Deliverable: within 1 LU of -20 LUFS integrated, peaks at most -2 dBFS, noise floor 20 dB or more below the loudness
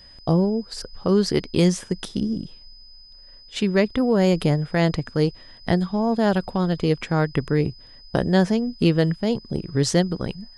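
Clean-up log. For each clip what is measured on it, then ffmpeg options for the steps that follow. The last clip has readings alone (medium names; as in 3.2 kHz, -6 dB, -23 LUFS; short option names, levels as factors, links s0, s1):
steady tone 5 kHz; tone level -46 dBFS; loudness -22.5 LUFS; peak level -5.5 dBFS; loudness target -20.0 LUFS
-> -af "bandreject=f=5000:w=30"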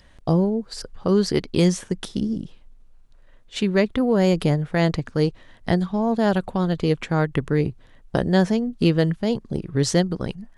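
steady tone not found; loudness -22.5 LUFS; peak level -5.5 dBFS; loudness target -20.0 LUFS
-> -af "volume=1.33"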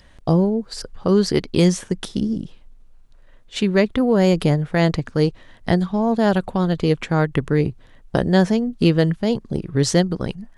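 loudness -20.0 LUFS; peak level -3.0 dBFS; noise floor -49 dBFS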